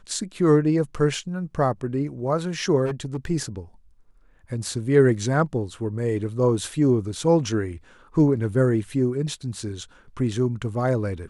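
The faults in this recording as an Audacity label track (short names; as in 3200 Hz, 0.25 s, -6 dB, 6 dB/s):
2.850000	3.260000	clipped -23 dBFS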